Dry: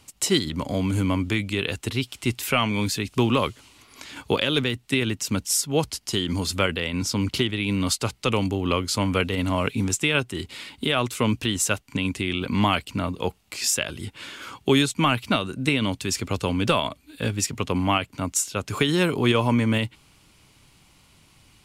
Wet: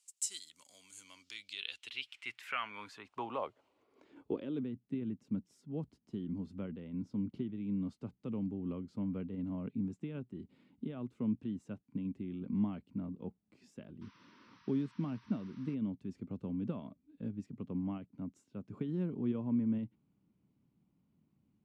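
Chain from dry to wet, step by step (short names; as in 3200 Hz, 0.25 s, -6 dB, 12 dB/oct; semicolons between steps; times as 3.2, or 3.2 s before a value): painted sound noise, 14.01–15.75, 900–6100 Hz -29 dBFS; band-pass sweep 7700 Hz -> 210 Hz, 0.87–4.76; gain -8 dB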